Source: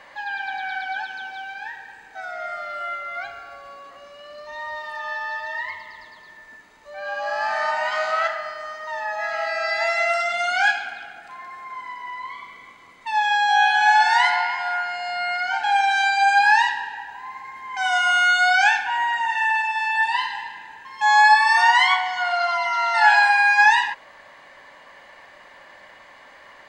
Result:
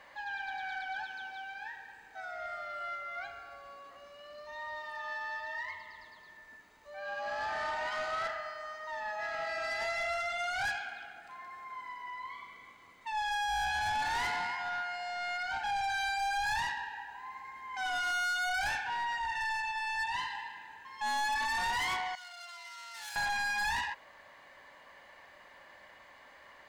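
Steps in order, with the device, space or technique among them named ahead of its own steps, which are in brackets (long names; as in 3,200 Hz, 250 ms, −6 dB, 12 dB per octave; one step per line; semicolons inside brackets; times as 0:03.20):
open-reel tape (soft clipping −21 dBFS, distortion −7 dB; parametric band 64 Hz +5 dB 1.17 octaves; white noise bed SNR 46 dB)
0:22.15–0:23.16: first-order pre-emphasis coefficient 0.97
level −9 dB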